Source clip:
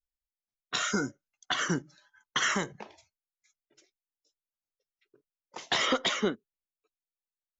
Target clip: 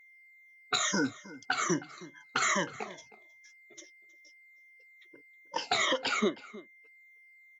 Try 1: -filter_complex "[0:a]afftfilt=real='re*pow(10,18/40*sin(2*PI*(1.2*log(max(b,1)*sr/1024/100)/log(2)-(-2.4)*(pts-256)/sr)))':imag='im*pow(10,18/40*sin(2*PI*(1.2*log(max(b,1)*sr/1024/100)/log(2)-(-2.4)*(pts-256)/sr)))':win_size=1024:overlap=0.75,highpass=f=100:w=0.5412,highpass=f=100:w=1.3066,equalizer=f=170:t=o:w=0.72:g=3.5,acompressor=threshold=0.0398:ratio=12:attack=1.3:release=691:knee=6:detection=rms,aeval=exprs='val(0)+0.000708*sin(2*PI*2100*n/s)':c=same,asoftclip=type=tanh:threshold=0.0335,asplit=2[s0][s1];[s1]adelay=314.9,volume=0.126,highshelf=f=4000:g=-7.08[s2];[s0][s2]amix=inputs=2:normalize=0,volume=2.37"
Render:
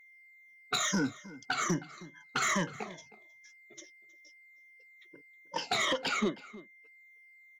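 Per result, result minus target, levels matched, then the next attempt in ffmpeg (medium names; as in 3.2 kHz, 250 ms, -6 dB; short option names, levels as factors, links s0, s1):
saturation: distortion +18 dB; 125 Hz band +5.0 dB
-filter_complex "[0:a]afftfilt=real='re*pow(10,18/40*sin(2*PI*(1.2*log(max(b,1)*sr/1024/100)/log(2)-(-2.4)*(pts-256)/sr)))':imag='im*pow(10,18/40*sin(2*PI*(1.2*log(max(b,1)*sr/1024/100)/log(2)-(-2.4)*(pts-256)/sr)))':win_size=1024:overlap=0.75,highpass=f=100:w=0.5412,highpass=f=100:w=1.3066,equalizer=f=170:t=o:w=0.72:g=3.5,acompressor=threshold=0.0398:ratio=12:attack=1.3:release=691:knee=6:detection=rms,aeval=exprs='val(0)+0.000708*sin(2*PI*2100*n/s)':c=same,asoftclip=type=tanh:threshold=0.119,asplit=2[s0][s1];[s1]adelay=314.9,volume=0.126,highshelf=f=4000:g=-7.08[s2];[s0][s2]amix=inputs=2:normalize=0,volume=2.37"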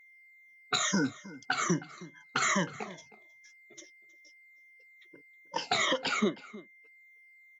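125 Hz band +5.0 dB
-filter_complex "[0:a]afftfilt=real='re*pow(10,18/40*sin(2*PI*(1.2*log(max(b,1)*sr/1024/100)/log(2)-(-2.4)*(pts-256)/sr)))':imag='im*pow(10,18/40*sin(2*PI*(1.2*log(max(b,1)*sr/1024/100)/log(2)-(-2.4)*(pts-256)/sr)))':win_size=1024:overlap=0.75,highpass=f=100:w=0.5412,highpass=f=100:w=1.3066,equalizer=f=170:t=o:w=0.72:g=-5,acompressor=threshold=0.0398:ratio=12:attack=1.3:release=691:knee=6:detection=rms,aeval=exprs='val(0)+0.000708*sin(2*PI*2100*n/s)':c=same,asoftclip=type=tanh:threshold=0.119,asplit=2[s0][s1];[s1]adelay=314.9,volume=0.126,highshelf=f=4000:g=-7.08[s2];[s0][s2]amix=inputs=2:normalize=0,volume=2.37"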